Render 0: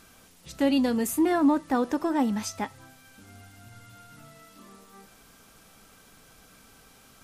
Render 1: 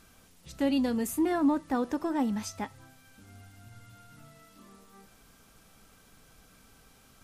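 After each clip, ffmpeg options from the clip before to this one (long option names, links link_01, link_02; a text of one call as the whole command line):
ffmpeg -i in.wav -af "lowshelf=frequency=140:gain=6.5,volume=-5dB" out.wav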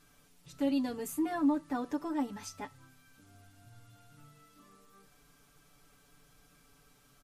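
ffmpeg -i in.wav -af "aecho=1:1:6.9:0.93,volume=-8dB" out.wav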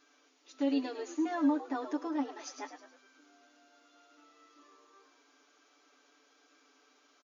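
ffmpeg -i in.wav -filter_complex "[0:a]asplit=6[link_01][link_02][link_03][link_04][link_05][link_06];[link_02]adelay=105,afreqshift=-110,volume=-8.5dB[link_07];[link_03]adelay=210,afreqshift=-220,volume=-15.1dB[link_08];[link_04]adelay=315,afreqshift=-330,volume=-21.6dB[link_09];[link_05]adelay=420,afreqshift=-440,volume=-28.2dB[link_10];[link_06]adelay=525,afreqshift=-550,volume=-34.7dB[link_11];[link_01][link_07][link_08][link_09][link_10][link_11]amix=inputs=6:normalize=0,afftfilt=real='re*between(b*sr/4096,250,7100)':imag='im*between(b*sr/4096,250,7100)':win_size=4096:overlap=0.75" out.wav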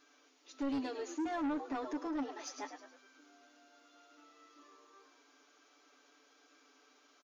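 ffmpeg -i in.wav -af "asoftclip=type=tanh:threshold=-32dB" out.wav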